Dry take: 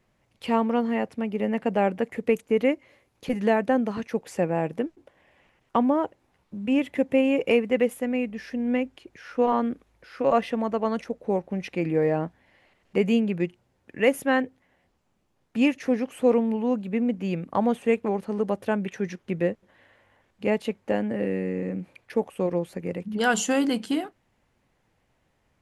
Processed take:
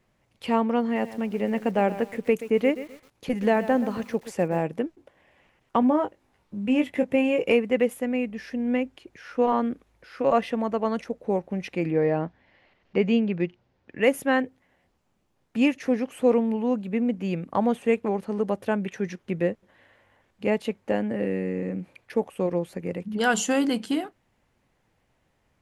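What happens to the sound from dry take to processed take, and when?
0.83–4.63 lo-fi delay 0.128 s, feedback 35%, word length 7-bit, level -13.5 dB
5.8–7.53 doubler 20 ms -7 dB
11.9–14.02 LPF 5400 Hz 24 dB/oct

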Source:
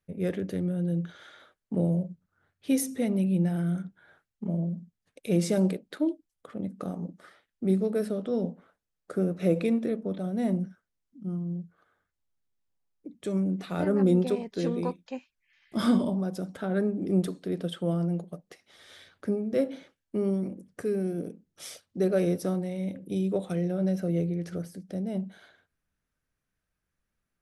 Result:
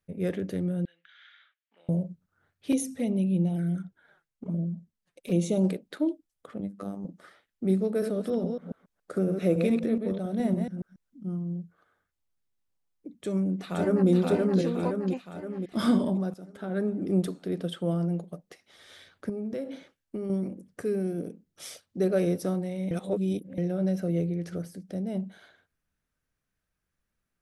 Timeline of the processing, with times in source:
0.85–1.89 Butterworth band-pass 2400 Hz, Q 1.3
2.72–5.64 envelope flanger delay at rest 7 ms, full sweep at -23 dBFS
6.6–7.05 robotiser 99.1 Hz
7.88–11.24 reverse delay 0.14 s, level -5.5 dB
13.2–14.09 echo throw 0.52 s, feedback 55%, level -1 dB
16.34–16.96 fade in, from -14.5 dB
19.29–20.3 compressor 10:1, threshold -29 dBFS
22.91–23.58 reverse

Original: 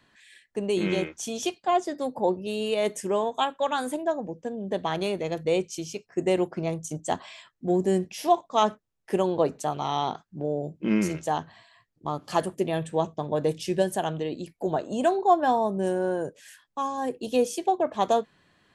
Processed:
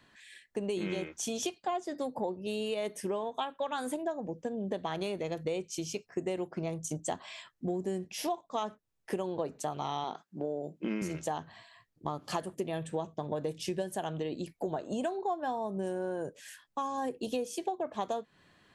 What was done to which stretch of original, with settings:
2.88–3.73 bell 7200 Hz -13 dB 0.24 oct
10.04–11.02 HPF 220 Hz
whole clip: compressor 6:1, threshold -31 dBFS

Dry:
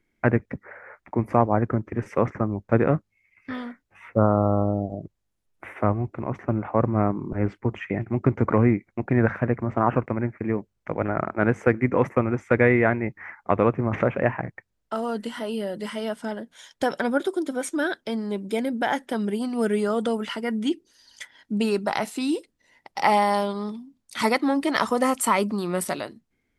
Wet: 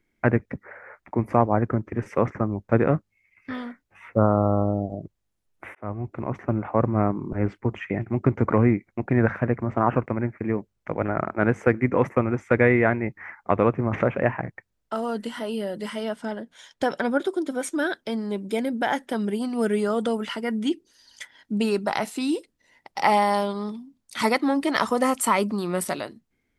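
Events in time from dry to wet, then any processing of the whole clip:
5.75–6.17 fade in
16.03–17.5 high shelf 9800 Hz -9 dB

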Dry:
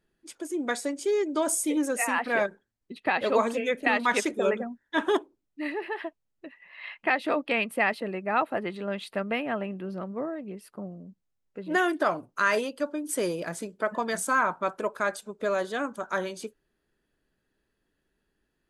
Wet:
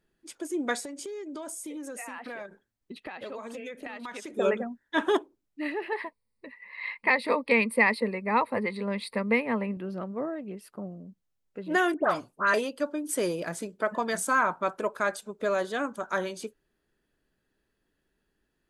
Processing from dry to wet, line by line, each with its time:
0.83–4.35 compressor 12:1, threshold -35 dBFS
5.92–9.77 ripple EQ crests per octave 0.93, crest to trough 14 dB
11.94–12.54 dispersion highs, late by 0.109 s, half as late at 2200 Hz

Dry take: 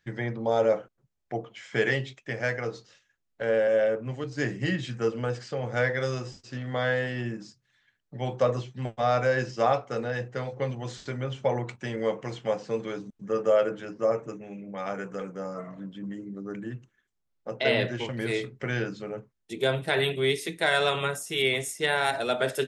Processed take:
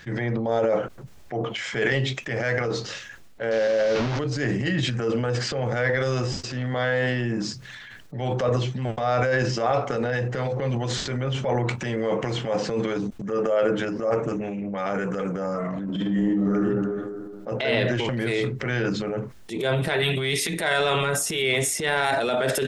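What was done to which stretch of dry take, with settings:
3.51–4.19 delta modulation 32 kbps, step -29 dBFS
14.1–14.75 Doppler distortion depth 0.12 ms
15.85–16.54 reverb throw, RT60 1.1 s, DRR -10.5 dB
20.02–20.53 bell 410 Hz -8 dB 1.4 oct
whole clip: high shelf 6300 Hz -5.5 dB; transient shaper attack -8 dB, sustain +9 dB; fast leveller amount 50%

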